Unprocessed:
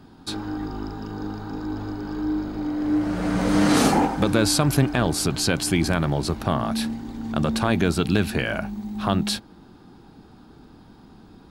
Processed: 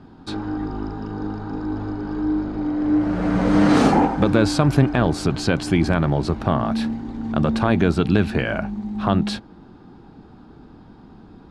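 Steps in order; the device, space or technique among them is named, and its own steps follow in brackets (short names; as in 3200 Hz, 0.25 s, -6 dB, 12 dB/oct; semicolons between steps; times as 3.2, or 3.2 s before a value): through cloth (LPF 8200 Hz 12 dB/oct; high shelf 3300 Hz -12 dB); gain +3.5 dB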